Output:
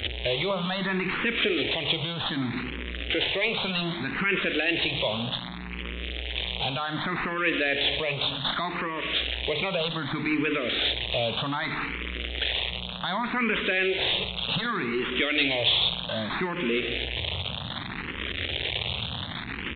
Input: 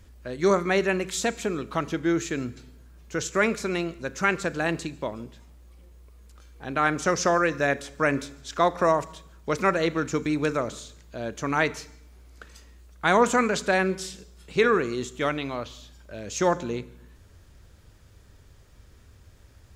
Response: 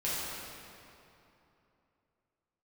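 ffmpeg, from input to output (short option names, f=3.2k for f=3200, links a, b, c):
-filter_complex "[0:a]aeval=exprs='val(0)+0.5*0.0335*sgn(val(0))':c=same,highpass=86,equalizer=f=2.4k:w=1.5:g=-2.5,bandreject=f=50:t=h:w=6,bandreject=f=100:t=h:w=6,bandreject=f=150:t=h:w=6,bandreject=f=200:t=h:w=6,bandreject=f=250:t=h:w=6,bandreject=f=300:t=h:w=6,bandreject=f=350:t=h:w=6,bandreject=f=400:t=h:w=6,asplit=2[a][b];[b]acompressor=threshold=-32dB:ratio=6,volume=2dB[c];[a][c]amix=inputs=2:normalize=0,alimiter=limit=-16.5dB:level=0:latency=1:release=60,aexciter=amount=6.4:drive=6:freq=2.1k,aresample=16000,volume=14dB,asoftclip=hard,volume=-14dB,aresample=44100,aresample=8000,aresample=44100,asplit=2[d][e];[e]afreqshift=0.65[f];[d][f]amix=inputs=2:normalize=1"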